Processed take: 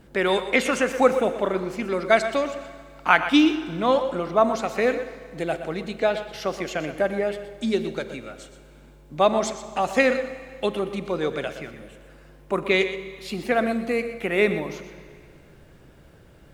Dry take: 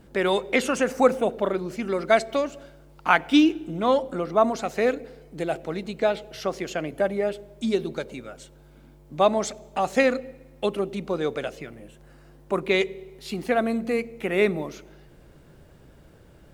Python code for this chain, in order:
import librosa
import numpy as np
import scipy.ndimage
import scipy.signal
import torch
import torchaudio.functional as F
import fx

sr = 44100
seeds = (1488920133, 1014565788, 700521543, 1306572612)

p1 = fx.peak_eq(x, sr, hz=2100.0, db=3.0, octaves=1.6)
p2 = p1 + fx.echo_single(p1, sr, ms=122, db=-12.0, dry=0)
y = fx.rev_schroeder(p2, sr, rt60_s=2.2, comb_ms=32, drr_db=13.0)